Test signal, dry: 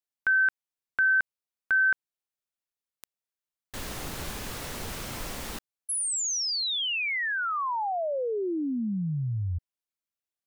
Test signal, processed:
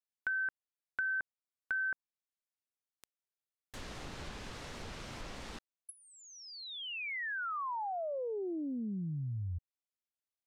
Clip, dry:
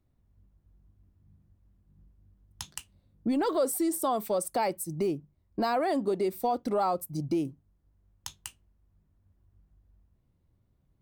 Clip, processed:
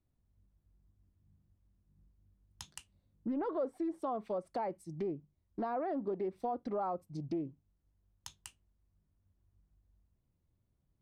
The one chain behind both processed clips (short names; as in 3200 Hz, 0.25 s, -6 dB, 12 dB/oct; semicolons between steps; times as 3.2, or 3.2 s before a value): treble ducked by the level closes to 1400 Hz, closed at -24.5 dBFS; Doppler distortion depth 0.16 ms; gain -8 dB